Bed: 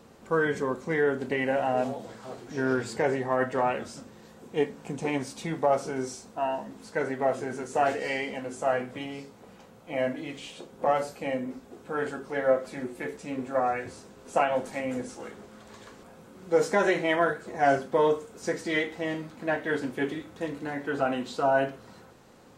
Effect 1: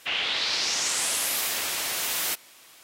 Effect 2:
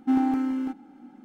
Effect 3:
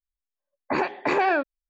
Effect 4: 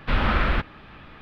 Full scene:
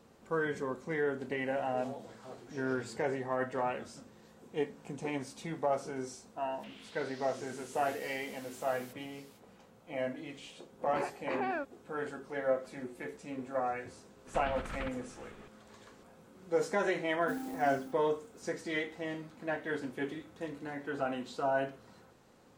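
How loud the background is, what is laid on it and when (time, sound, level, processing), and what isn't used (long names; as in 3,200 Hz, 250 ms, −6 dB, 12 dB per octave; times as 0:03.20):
bed −7.5 dB
0:06.58: mix in 1 −11.5 dB, fades 0.05 s + downward compressor, threshold −42 dBFS
0:10.22: mix in 3 −13 dB + high-shelf EQ 4,900 Hz −11 dB
0:14.27: mix in 4 −15.5 dB + compressor whose output falls as the input rises −24 dBFS, ratio −0.5
0:17.20: mix in 2 −17.5 dB + converter with an unsteady clock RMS 0.07 ms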